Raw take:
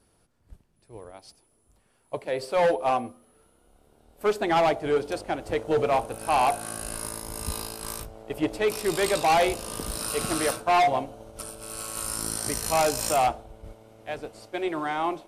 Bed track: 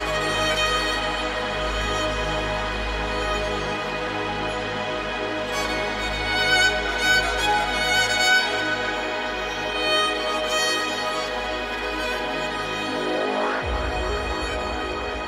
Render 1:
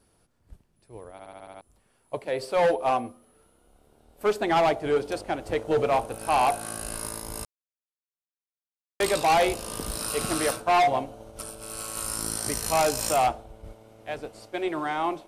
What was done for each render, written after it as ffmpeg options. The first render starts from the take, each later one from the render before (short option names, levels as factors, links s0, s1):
-filter_complex "[0:a]asplit=10[s0][s1][s2][s3][s4][s5][s6][s7][s8][s9];[s0]atrim=end=1.192[s10];[s1]atrim=start=1.118:end=1.192[s11];[s2]atrim=start=1.118:end=1.192[s12];[s3]atrim=start=1.118:end=1.192[s13];[s4]atrim=start=1.118:end=1.192[s14];[s5]atrim=start=1.118:end=1.192[s15];[s6]atrim=start=1.118:end=1.192[s16];[s7]atrim=start=1.608:end=7.45,asetpts=PTS-STARTPTS,afade=t=out:st=5.838:d=0.004:c=hsin[s17];[s8]atrim=start=7.45:end=9,asetpts=PTS-STARTPTS,volume=0[s18];[s9]atrim=start=9,asetpts=PTS-STARTPTS,afade=t=in:d=0.004:c=hsin[s19];[s10][s11]acrossfade=d=0.004:c1=hsin:c2=hsin[s20];[s20][s12]acrossfade=d=0.004:c1=hsin:c2=hsin[s21];[s21][s13]acrossfade=d=0.004:c1=hsin:c2=hsin[s22];[s22][s14]acrossfade=d=0.004:c1=hsin:c2=hsin[s23];[s23][s15]acrossfade=d=0.004:c1=hsin:c2=hsin[s24];[s24][s16]acrossfade=d=0.004:c1=hsin:c2=hsin[s25];[s17][s18][s19]concat=n=3:v=0:a=1[s26];[s25][s26]acrossfade=d=0.004:c1=hsin:c2=hsin"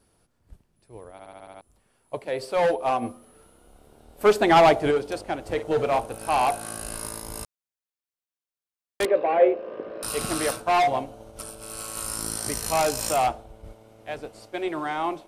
-filter_complex "[0:a]asplit=3[s0][s1][s2];[s0]afade=t=out:st=3.01:d=0.02[s3];[s1]acontrast=64,afade=t=in:st=3.01:d=0.02,afade=t=out:st=4.9:d=0.02[s4];[s2]afade=t=in:st=4.9:d=0.02[s5];[s3][s4][s5]amix=inputs=3:normalize=0,asettb=1/sr,asplit=3[s6][s7][s8];[s6]atrim=end=5.454[s9];[s7]atrim=start=5.45:end=5.99,asetpts=PTS-STARTPTS,afade=t=in:d=0.004:c=qsin,afade=t=out:st=0.536:d=0.004:c=qsin,asplit=2[s10][s11];[s11]adelay=48,volume=0.237[s12];[s10][s12]amix=inputs=2:normalize=0,atrim=end_sample=23814[s13];[s8]atrim=start=5.986[s14];[s9][s13]acrossfade=d=0.004:c1=hsin:c2=qsin[s15];[s15][s14]acrossfade=d=0.004:c1=qsin:c2=hsin,asettb=1/sr,asplit=3[s16][s17][s18];[s16]atrim=end=9.054[s19];[s17]atrim=start=9.05:end=10.03,asetpts=PTS-STARTPTS,afade=t=in:d=0.004:c=qsin,afade=t=out:st=0.976:d=0.004:c=qsin,highpass=350,equalizer=f=370:t=q:w=4:g=7,equalizer=f=540:t=q:w=4:g=10,equalizer=f=890:t=q:w=4:g=-9,equalizer=f=1300:t=q:w=4:g=-7,equalizer=f=2000:t=q:w=4:g=-3,lowpass=f=2000:w=0.5412,lowpass=f=2000:w=1.3066[s20];[s18]atrim=start=10.026[s21];[s19][s20]acrossfade=d=0.004:c1=hsin:c2=qsin[s22];[s22][s21]acrossfade=d=0.004:c1=qsin:c2=hsin"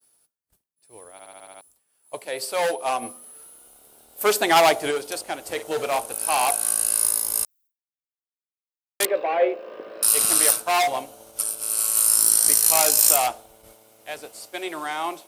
-af "aemphasis=mode=production:type=riaa,agate=range=0.0224:threshold=0.00316:ratio=3:detection=peak"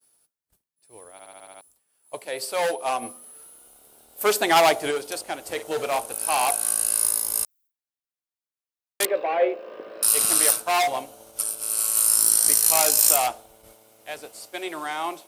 -af "volume=0.891"